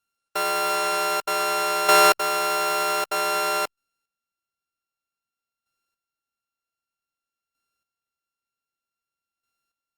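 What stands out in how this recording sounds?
a buzz of ramps at a fixed pitch in blocks of 32 samples; chopped level 0.53 Hz, depth 65%, duty 15%; Opus

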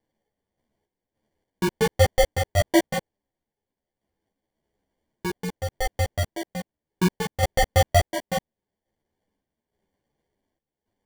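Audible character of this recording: aliases and images of a low sample rate 1.3 kHz, jitter 0%; random-step tremolo, depth 80%; a shimmering, thickened sound

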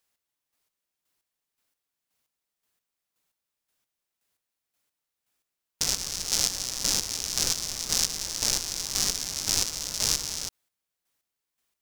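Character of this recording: chopped level 1.9 Hz, depth 60%, duty 30%

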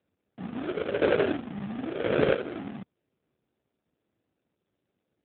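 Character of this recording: aliases and images of a low sample rate 1 kHz, jitter 20%; chopped level 0.98 Hz, depth 60%, duty 30%; AMR-NB

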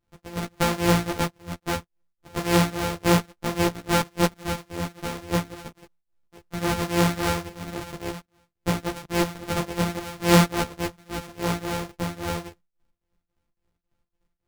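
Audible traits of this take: a buzz of ramps at a fixed pitch in blocks of 256 samples; tremolo triangle 3.6 Hz, depth 95%; a shimmering, thickened sound

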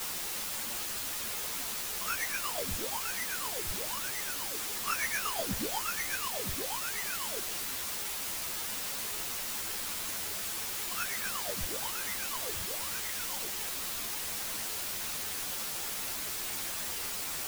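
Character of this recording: aliases and images of a low sample rate 4 kHz, jitter 0%; tremolo triangle 8.2 Hz, depth 90%; a quantiser's noise floor 6-bit, dither triangular; a shimmering, thickened sound

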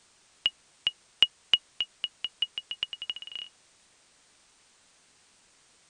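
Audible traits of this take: chopped level 3.3 Hz, depth 60%, duty 35%; a quantiser's noise floor 10-bit, dither triangular; MP2

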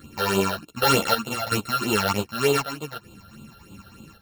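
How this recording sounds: a buzz of ramps at a fixed pitch in blocks of 32 samples; phasing stages 8, 3.3 Hz, lowest notch 290–1800 Hz; chopped level 0.66 Hz, depth 65%, duty 75%; a shimmering, thickened sound

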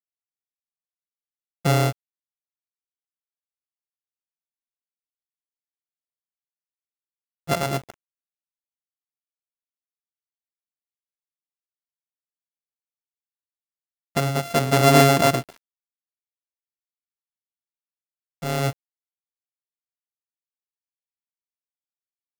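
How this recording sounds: a buzz of ramps at a fixed pitch in blocks of 64 samples; tremolo triangle 0.75 Hz, depth 65%; a quantiser's noise floor 8-bit, dither none

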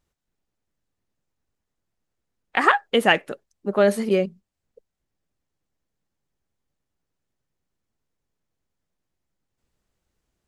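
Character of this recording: noise floor -82 dBFS; spectral tilt -2.5 dB/octave

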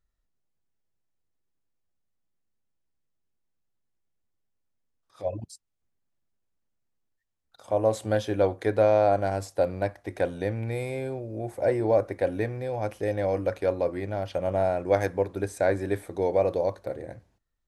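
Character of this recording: noise floor -78 dBFS; spectral tilt -4.5 dB/octave

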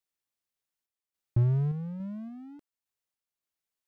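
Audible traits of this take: random-step tremolo

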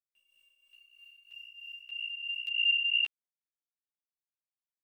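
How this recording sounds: a quantiser's noise floor 12-bit, dither none; tremolo triangle 3.1 Hz, depth 65%; a shimmering, thickened sound

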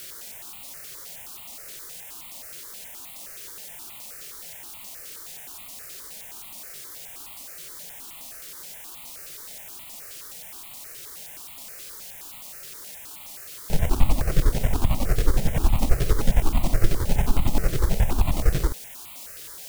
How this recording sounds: aliases and images of a low sample rate 1.7 kHz, jitter 0%; chopped level 11 Hz, depth 65%, duty 40%; a quantiser's noise floor 8-bit, dither triangular; notches that jump at a steady rate 9.5 Hz 240–1600 Hz

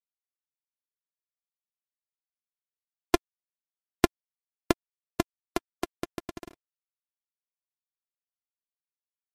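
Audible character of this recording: a buzz of ramps at a fixed pitch in blocks of 128 samples; chopped level 3.5 Hz, depth 60%, duty 75%; a quantiser's noise floor 10-bit, dither none; MP3

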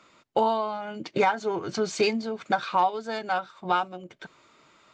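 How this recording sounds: noise floor -61 dBFS; spectral tilt -2.5 dB/octave

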